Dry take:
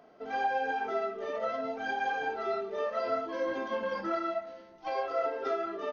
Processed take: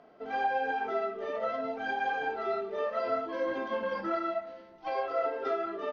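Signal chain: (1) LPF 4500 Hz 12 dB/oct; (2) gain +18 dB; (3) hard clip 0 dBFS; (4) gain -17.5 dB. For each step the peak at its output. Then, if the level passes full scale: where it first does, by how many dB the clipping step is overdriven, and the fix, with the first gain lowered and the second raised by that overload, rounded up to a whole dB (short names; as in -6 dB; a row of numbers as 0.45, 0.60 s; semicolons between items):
-19.5, -1.5, -1.5, -19.0 dBFS; no overload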